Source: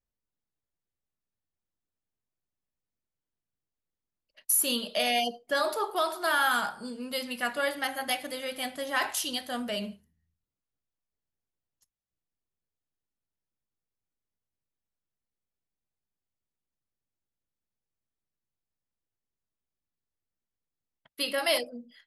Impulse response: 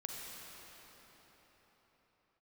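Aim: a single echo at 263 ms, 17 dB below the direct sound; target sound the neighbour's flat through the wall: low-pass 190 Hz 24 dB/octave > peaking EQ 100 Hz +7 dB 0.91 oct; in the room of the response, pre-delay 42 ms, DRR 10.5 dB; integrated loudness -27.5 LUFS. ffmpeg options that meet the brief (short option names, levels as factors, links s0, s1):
-filter_complex "[0:a]aecho=1:1:263:0.141,asplit=2[s0][s1];[1:a]atrim=start_sample=2205,adelay=42[s2];[s1][s2]afir=irnorm=-1:irlink=0,volume=0.299[s3];[s0][s3]amix=inputs=2:normalize=0,lowpass=f=190:w=0.5412,lowpass=f=190:w=1.3066,equalizer=f=100:t=o:w=0.91:g=7,volume=15"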